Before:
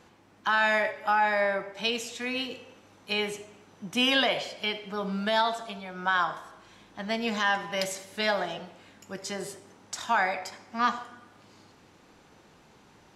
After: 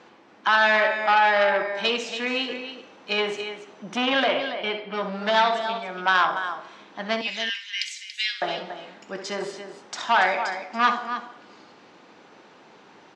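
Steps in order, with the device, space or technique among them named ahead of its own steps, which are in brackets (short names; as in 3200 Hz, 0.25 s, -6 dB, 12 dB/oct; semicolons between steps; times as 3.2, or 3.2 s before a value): 3.98–4.93 air absorption 260 m; 7.21–8.42 steep high-pass 2100 Hz 36 dB/oct; loudspeakers at several distances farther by 22 m -11 dB, 97 m -11 dB; public-address speaker with an overloaded transformer (core saturation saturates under 1800 Hz; BPF 260–6300 Hz); air absorption 70 m; gain +7.5 dB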